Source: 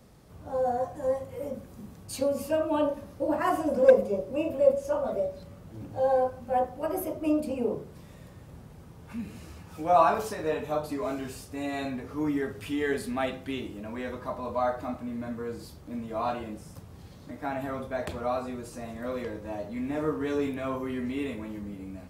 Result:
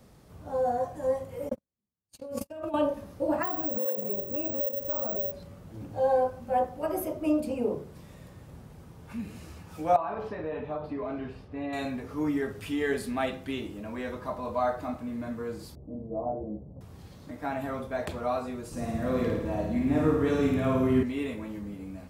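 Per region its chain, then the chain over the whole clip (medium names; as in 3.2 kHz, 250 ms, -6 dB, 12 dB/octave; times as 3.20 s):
1.49–2.74 s: gate -34 dBFS, range -55 dB + compressor with a negative ratio -36 dBFS
3.43–5.32 s: compression 10:1, threshold -29 dBFS + distance through air 200 m + careless resampling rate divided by 2×, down none, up zero stuff
9.96–11.73 s: distance through air 370 m + band-stop 1.4 kHz, Q 24 + compression, threshold -29 dBFS
15.75–16.81 s: inverse Chebyshev low-pass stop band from 2.2 kHz, stop band 60 dB + doubling 15 ms -4 dB
18.71–21.03 s: bass shelf 280 Hz +10 dB + flutter echo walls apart 9.3 m, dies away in 0.96 s
whole clip: none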